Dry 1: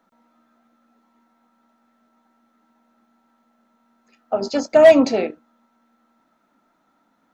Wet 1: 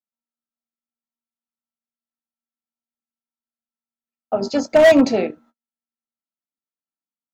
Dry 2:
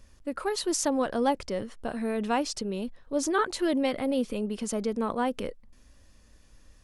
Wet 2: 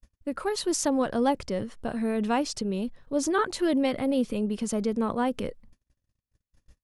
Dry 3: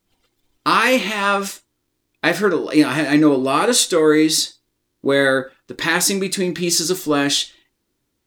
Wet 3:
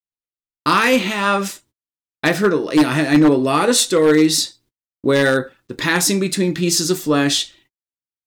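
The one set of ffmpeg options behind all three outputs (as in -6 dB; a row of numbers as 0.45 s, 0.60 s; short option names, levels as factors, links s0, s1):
-af "agate=range=0.00794:threshold=0.00316:ratio=16:detection=peak,equalizer=f=120:t=o:w=1.9:g=6.5,aeval=exprs='0.531*(abs(mod(val(0)/0.531+3,4)-2)-1)':c=same"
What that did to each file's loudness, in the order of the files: 0.0 LU, +1.5 LU, +1.0 LU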